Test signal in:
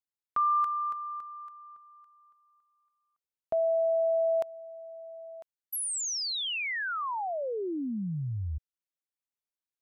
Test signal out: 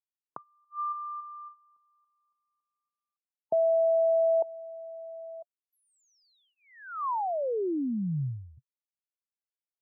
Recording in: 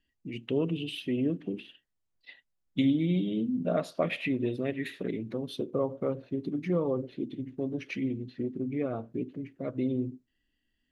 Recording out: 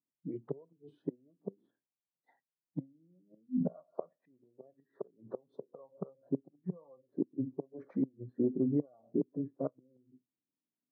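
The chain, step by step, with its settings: inverted gate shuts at -23 dBFS, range -27 dB; elliptic band-pass 130–1100 Hz, stop band 40 dB; spectral noise reduction 15 dB; trim +3.5 dB

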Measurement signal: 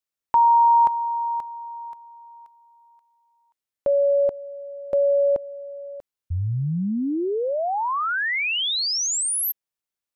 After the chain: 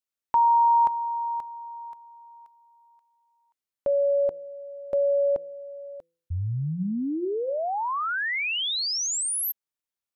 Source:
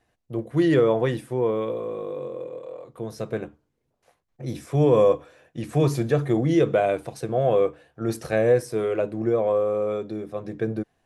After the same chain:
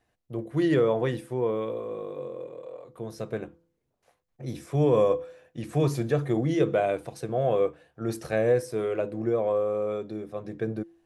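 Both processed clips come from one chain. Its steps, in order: de-hum 168.1 Hz, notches 3; trim -3.5 dB

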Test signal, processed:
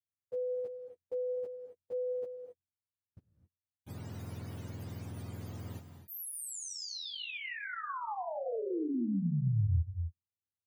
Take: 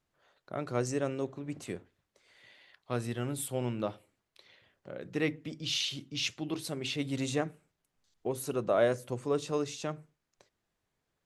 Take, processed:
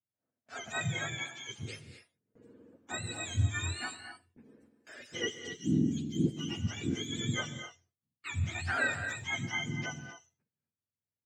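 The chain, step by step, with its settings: spectrum inverted on a logarithmic axis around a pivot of 960 Hz; gate with hold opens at -49 dBFS; gated-style reverb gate 290 ms rising, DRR 7.5 dB; trim -1.5 dB

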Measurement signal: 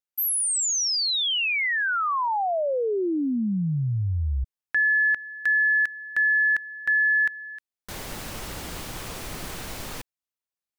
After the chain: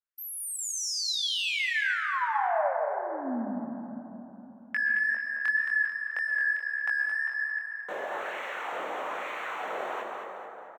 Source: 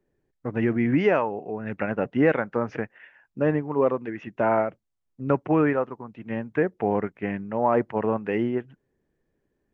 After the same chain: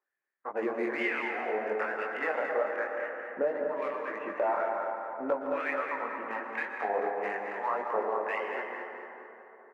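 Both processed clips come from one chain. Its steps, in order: local Wiener filter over 9 samples; high-pass 150 Hz 24 dB/octave; treble shelf 3.1 kHz -9.5 dB; level rider gain up to 7 dB; LFO high-pass sine 1.1 Hz 500–2100 Hz; compression 3:1, threshold -29 dBFS; chorus 1.9 Hz, delay 18.5 ms, depth 7.3 ms; on a send: feedback delay 220 ms, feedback 42%, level -7.5 dB; on the sum: plate-style reverb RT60 3.5 s, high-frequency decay 0.3×, pre-delay 105 ms, DRR 3.5 dB

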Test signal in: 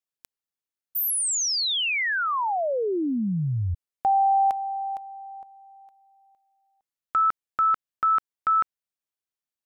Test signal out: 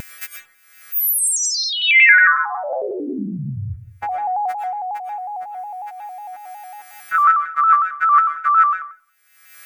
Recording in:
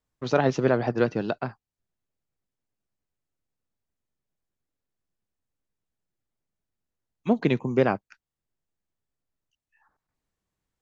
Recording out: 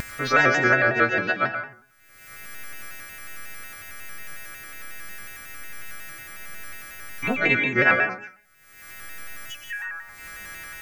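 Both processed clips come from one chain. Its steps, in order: partials quantised in pitch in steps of 2 st; high-order bell 1.8 kHz +15 dB 1.1 oct; upward compressor 4:1, threshold -20 dBFS; algorithmic reverb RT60 0.5 s, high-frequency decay 0.65×, pre-delay 75 ms, DRR 3 dB; vibrato with a chosen wave square 5.5 Hz, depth 100 cents; trim -3 dB

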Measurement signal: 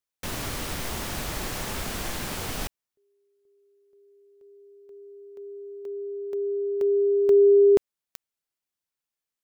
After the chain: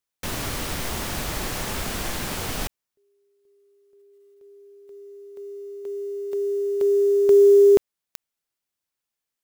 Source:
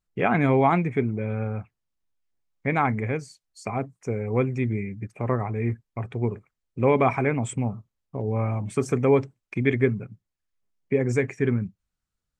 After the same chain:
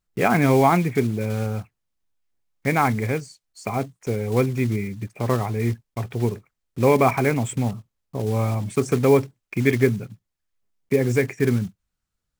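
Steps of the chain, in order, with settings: block-companded coder 5-bit; trim +3 dB

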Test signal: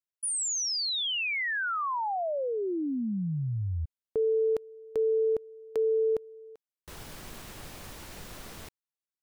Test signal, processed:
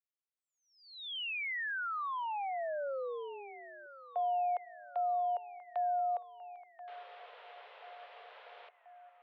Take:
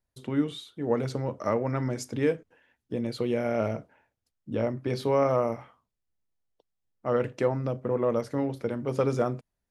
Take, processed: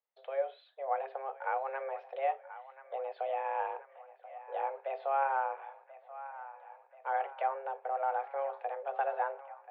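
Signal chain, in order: low-pass that closes with the level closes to 2.3 kHz, closed at -26.5 dBFS; mistuned SSB +270 Hz 200–3200 Hz; feedback echo behind a band-pass 1033 ms, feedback 62%, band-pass 1.3 kHz, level -13.5 dB; trim -6.5 dB

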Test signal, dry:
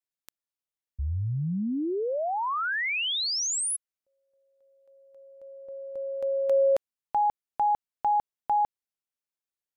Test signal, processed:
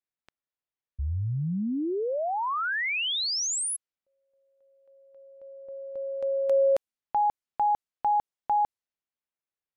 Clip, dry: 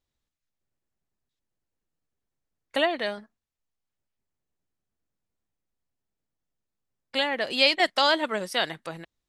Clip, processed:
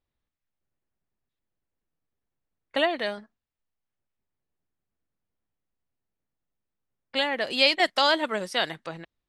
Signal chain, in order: level-controlled noise filter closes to 2.9 kHz, open at -24.5 dBFS

